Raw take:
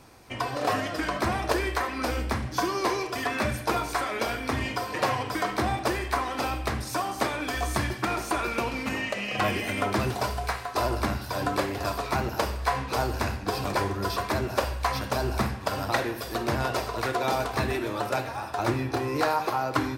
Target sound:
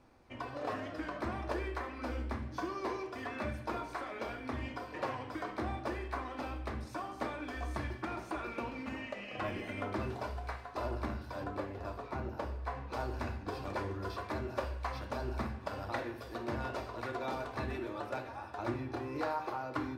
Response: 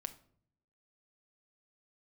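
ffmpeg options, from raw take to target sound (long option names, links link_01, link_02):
-filter_complex "[0:a]asetnsamples=nb_out_samples=441:pad=0,asendcmd='11.44 lowpass f 1000;12.92 lowpass f 2400',lowpass=frequency=1900:poles=1[link_01];[1:a]atrim=start_sample=2205,asetrate=74970,aresample=44100[link_02];[link_01][link_02]afir=irnorm=-1:irlink=0,volume=-3dB"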